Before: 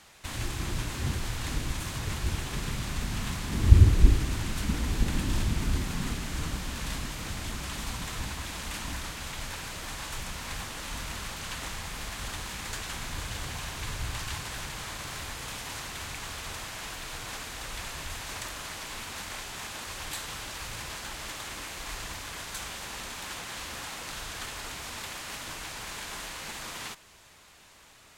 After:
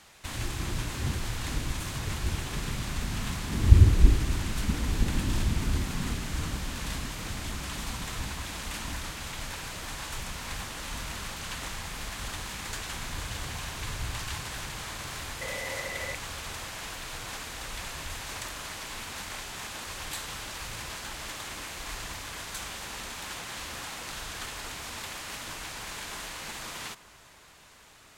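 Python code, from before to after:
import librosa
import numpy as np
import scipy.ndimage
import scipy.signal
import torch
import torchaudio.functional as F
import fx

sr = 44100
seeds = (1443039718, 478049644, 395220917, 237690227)

p1 = fx.small_body(x, sr, hz=(540.0, 2000.0), ring_ms=45, db=18, at=(15.41, 16.15))
y = p1 + fx.echo_bbd(p1, sr, ms=291, stages=4096, feedback_pct=81, wet_db=-21, dry=0)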